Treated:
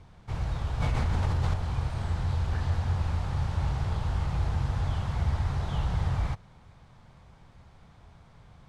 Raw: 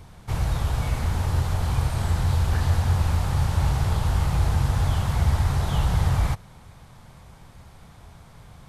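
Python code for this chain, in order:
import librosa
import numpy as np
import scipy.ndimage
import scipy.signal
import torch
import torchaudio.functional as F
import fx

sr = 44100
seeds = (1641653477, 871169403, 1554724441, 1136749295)

y = fx.air_absorb(x, sr, metres=83.0)
y = fx.env_flatten(y, sr, amount_pct=100, at=(0.8, 1.54))
y = y * 10.0 ** (-6.5 / 20.0)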